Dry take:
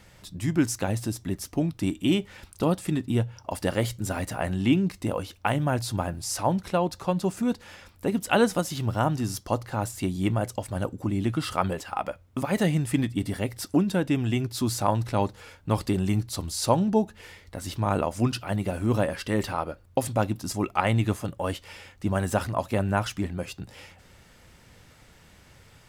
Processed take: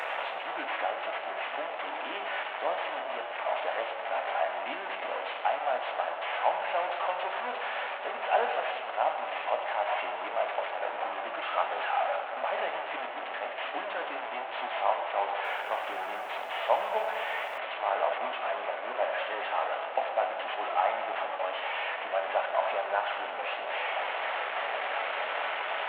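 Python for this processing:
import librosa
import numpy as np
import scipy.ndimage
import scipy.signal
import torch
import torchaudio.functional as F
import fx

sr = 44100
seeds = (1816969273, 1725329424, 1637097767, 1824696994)

y = fx.delta_mod(x, sr, bps=16000, step_db=-20.5)
y = fx.rider(y, sr, range_db=10, speed_s=2.0)
y = fx.ladder_highpass(y, sr, hz=600.0, resonance_pct=55)
y = fx.rev_fdn(y, sr, rt60_s=2.0, lf_ratio=0.8, hf_ratio=1.0, size_ms=71.0, drr_db=3.0)
y = fx.echo_crushed(y, sr, ms=214, feedback_pct=55, bits=8, wet_db=-13, at=(15.23, 17.58))
y = y * librosa.db_to_amplitude(1.5)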